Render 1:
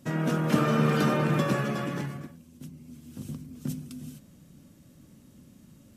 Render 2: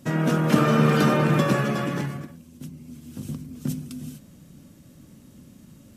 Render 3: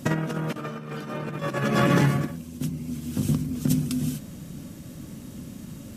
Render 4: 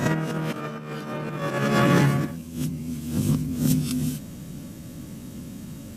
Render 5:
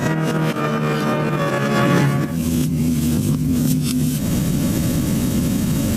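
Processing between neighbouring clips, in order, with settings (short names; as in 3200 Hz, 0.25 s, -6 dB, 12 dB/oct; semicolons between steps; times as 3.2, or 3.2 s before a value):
ending taper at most 230 dB/s; gain +5 dB
negative-ratio compressor -27 dBFS, ratio -0.5; gain +3.5 dB
spectral swells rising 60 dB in 0.40 s
recorder AGC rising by 73 dB/s; gain +3 dB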